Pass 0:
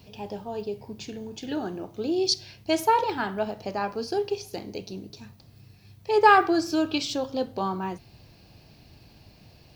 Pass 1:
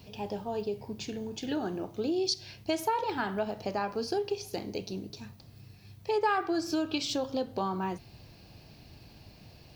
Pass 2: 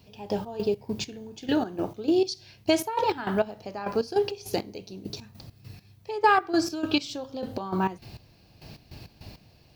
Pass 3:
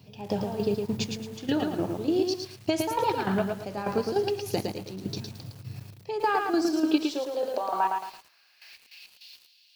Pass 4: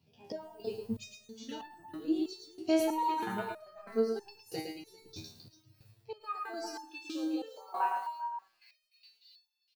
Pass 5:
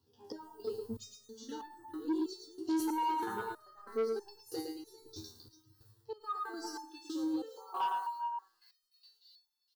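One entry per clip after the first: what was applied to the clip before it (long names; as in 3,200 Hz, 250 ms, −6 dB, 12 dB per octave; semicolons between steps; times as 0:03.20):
downward compressor 3 to 1, threshold −28 dBFS, peak gain reduction 12.5 dB
gate pattern "..x.x.x." 101 BPM −12 dB; level +8 dB
high-pass filter sweep 120 Hz → 3,300 Hz, 0:06.00–0:09.23; downward compressor, threshold −22 dBFS, peak gain reduction 9 dB; feedback echo at a low word length 111 ms, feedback 35%, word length 8 bits, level −4 dB
single-tap delay 395 ms −11 dB; noise reduction from a noise print of the clip's start 11 dB; step-sequenced resonator 3.1 Hz 80–880 Hz; level +4 dB
phaser with its sweep stopped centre 640 Hz, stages 6; soft clipping −29.5 dBFS, distortion −13 dB; level +2 dB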